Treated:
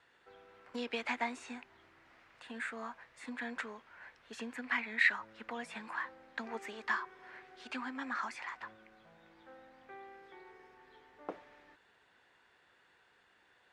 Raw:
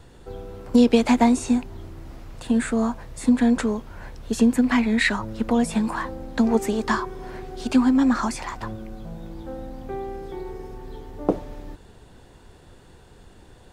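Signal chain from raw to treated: band-pass 1900 Hz, Q 1.7; gain -5 dB

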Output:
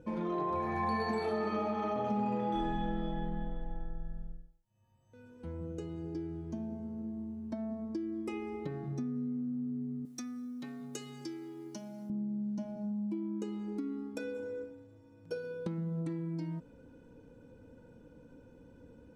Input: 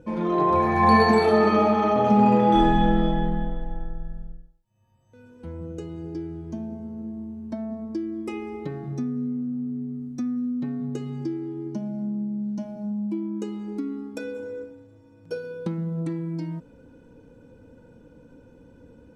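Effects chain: 10.05–12.1 tilt +4.5 dB/oct; compressor 3:1, threshold -28 dBFS, peak gain reduction 12 dB; gain -5.5 dB

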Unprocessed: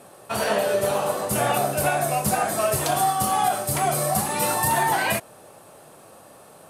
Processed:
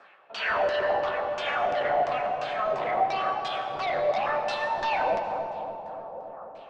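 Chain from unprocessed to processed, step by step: elliptic band-pass 130–8100 Hz; bell 4000 Hz -3.5 dB 1.7 oct; in parallel at 0 dB: limiter -19 dBFS, peak gain reduction 7.5 dB; on the sum: LFO band-pass sine 0.93 Hz 540–3500 Hz; overloaded stage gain 27.5 dB; LFO low-pass saw down 2.9 Hz 440–5900 Hz; air absorption 62 m; analogue delay 0.288 s, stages 2048, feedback 66%, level -6.5 dB; on a send at -7 dB: reverb RT60 2.0 s, pre-delay 69 ms

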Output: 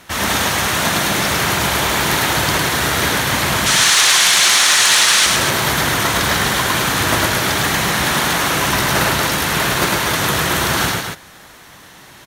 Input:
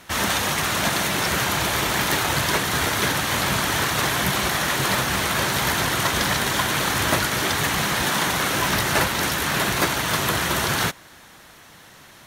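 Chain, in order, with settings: 3.66–5.26 weighting filter ITU-R 468; soft clip -9 dBFS, distortion -21 dB; on a send: loudspeakers at several distances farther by 36 m -2 dB, 81 m -6 dB; on the sum: gain +3 dB

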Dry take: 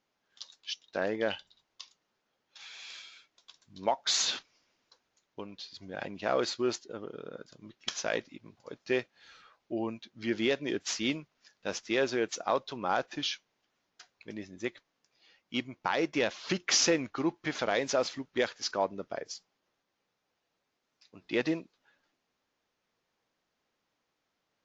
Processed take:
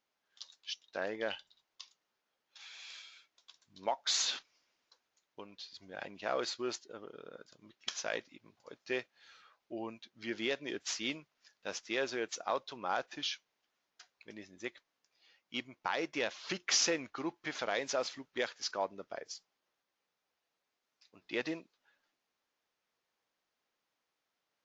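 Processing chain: low shelf 360 Hz -9 dB; gain -3.5 dB

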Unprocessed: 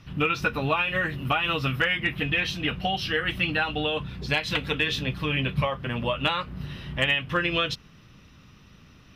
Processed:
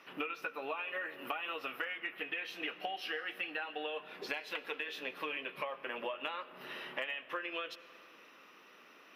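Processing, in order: HPF 370 Hz 24 dB/oct; band shelf 5500 Hz -8 dB; compressor 12:1, threshold -37 dBFS, peak gain reduction 18 dB; on a send: reverb RT60 3.0 s, pre-delay 45 ms, DRR 15.5 dB; on the sum: gain +1 dB

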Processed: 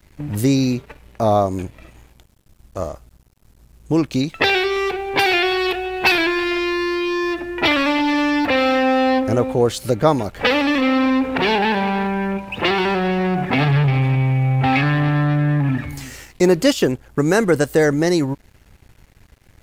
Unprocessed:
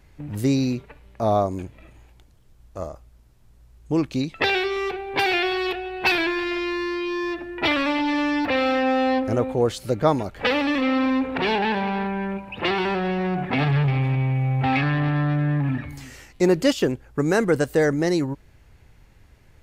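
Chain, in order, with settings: high shelf 6400 Hz +5.5 dB; in parallel at -2.5 dB: compressor, threshold -27 dBFS, peak gain reduction 13.5 dB; on the sum: crossover distortion -50 dBFS; gain +2.5 dB

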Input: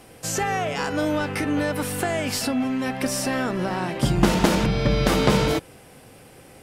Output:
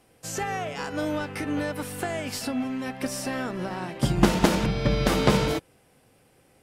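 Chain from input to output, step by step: upward expander 1.5:1, over -39 dBFS

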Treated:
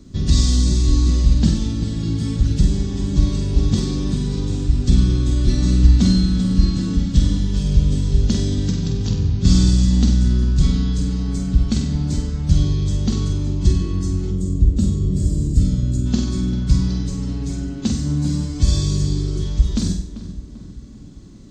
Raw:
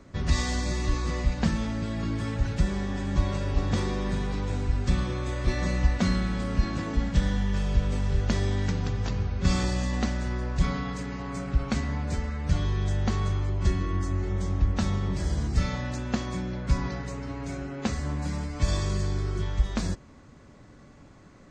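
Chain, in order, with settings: band shelf 1100 Hz -15.5 dB 2.7 oct; darkening echo 0.392 s, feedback 53%, low-pass 2300 Hz, level -12.5 dB; spectral gain 14.31–16.06, 650–6600 Hz -10 dB; flutter echo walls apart 8.2 m, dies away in 0.53 s; gain +8.5 dB

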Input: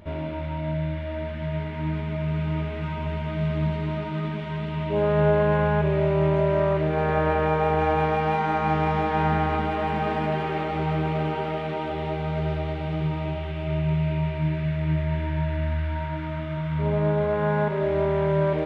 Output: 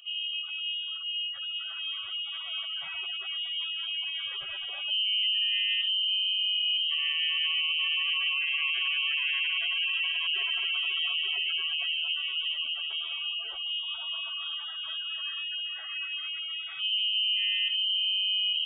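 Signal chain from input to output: HPF 310 Hz 24 dB/oct; bell 1500 Hz -5.5 dB 1.5 oct; spectral gate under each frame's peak -20 dB strong; limiter -23.5 dBFS, peak gain reduction 8.5 dB; inverted band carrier 3500 Hz; gain +2 dB

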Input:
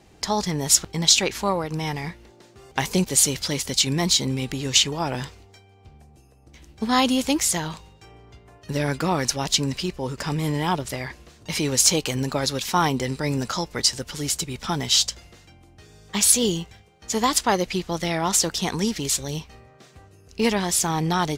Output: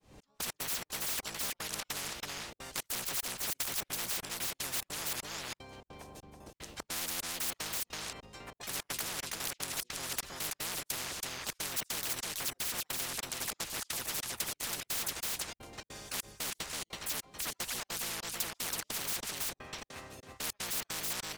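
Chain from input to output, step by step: opening faded in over 0.60 s; gate -44 dBFS, range -9 dB; in parallel at +1.5 dB: compressor 12:1, threshold -32 dBFS, peak gain reduction 21 dB; on the sum: harmoniser -7 st -7 dB, +5 st -4 dB; step gate "xx..x.xx.x" 150 bpm -60 dB; soft clip -16 dBFS, distortion -10 dB; on a send: echo 0.327 s -8.5 dB; on the sum: spectral compressor 10:1; gain -3.5 dB

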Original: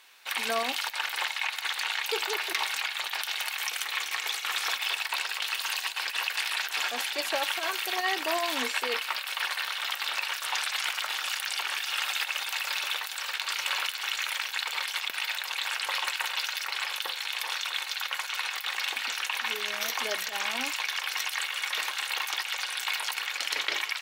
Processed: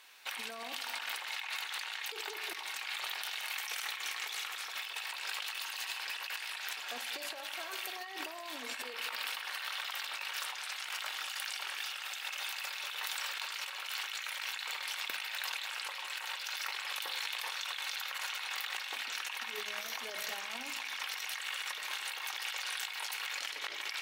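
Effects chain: two-slope reverb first 0.87 s, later 3.1 s, from -18 dB, DRR 8.5 dB; negative-ratio compressor -35 dBFS, ratio -1; gain -5.5 dB

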